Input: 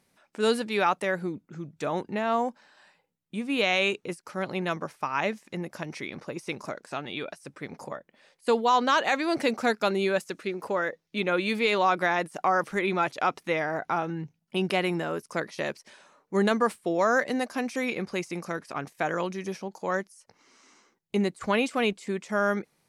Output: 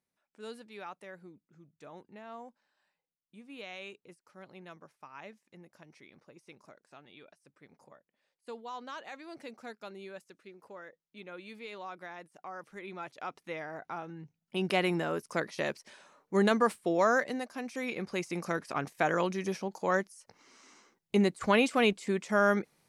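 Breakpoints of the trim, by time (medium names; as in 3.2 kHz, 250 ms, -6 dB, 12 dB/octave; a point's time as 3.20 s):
12.48 s -20 dB
13.53 s -12 dB
14.18 s -12 dB
14.77 s -2 dB
17.07 s -2 dB
17.50 s -10 dB
18.51 s 0 dB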